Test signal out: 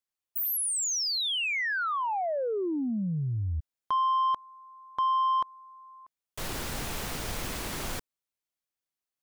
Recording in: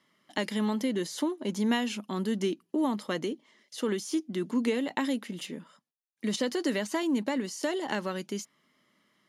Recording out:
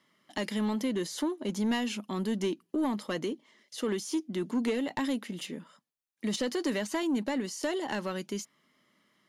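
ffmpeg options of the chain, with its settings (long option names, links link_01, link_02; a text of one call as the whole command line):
ffmpeg -i in.wav -af "asoftclip=type=tanh:threshold=-21.5dB" out.wav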